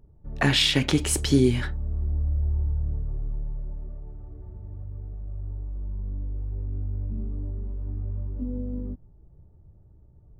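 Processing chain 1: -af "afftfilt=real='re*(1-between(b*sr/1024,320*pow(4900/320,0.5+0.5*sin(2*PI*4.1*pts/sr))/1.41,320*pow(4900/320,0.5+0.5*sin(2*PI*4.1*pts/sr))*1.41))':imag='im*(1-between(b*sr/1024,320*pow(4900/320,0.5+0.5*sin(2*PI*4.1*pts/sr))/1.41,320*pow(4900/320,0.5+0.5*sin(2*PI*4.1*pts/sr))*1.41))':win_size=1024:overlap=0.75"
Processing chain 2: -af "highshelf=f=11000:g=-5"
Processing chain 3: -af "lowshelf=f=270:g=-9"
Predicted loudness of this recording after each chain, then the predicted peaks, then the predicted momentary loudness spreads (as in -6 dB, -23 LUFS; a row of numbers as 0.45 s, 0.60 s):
-28.0 LUFS, -28.0 LUFS, -28.5 LUFS; -6.5 dBFS, -6.5 dBFS, -6.0 dBFS; 19 LU, 19 LU, 22 LU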